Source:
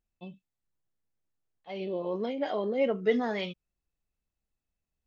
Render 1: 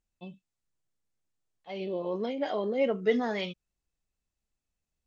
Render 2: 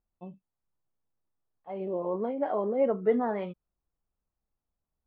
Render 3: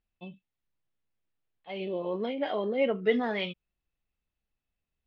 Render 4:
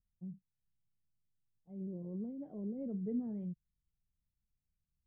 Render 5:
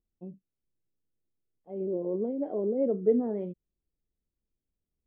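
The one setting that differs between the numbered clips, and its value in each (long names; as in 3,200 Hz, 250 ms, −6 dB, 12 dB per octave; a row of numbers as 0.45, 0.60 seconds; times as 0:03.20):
low-pass with resonance, frequency: 7,900, 1,100, 3,100, 150, 400 Hertz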